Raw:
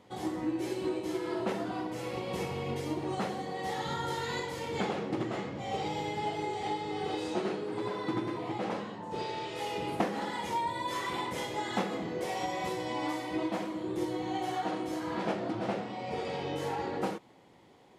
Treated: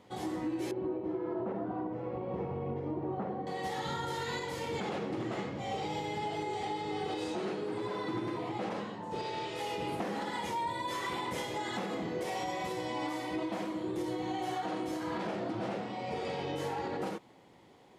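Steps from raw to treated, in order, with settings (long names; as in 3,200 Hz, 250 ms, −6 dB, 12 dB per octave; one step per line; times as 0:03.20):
0:00.71–0:03.47: low-pass filter 1,000 Hz 12 dB per octave
brickwall limiter −27 dBFS, peak gain reduction 8 dB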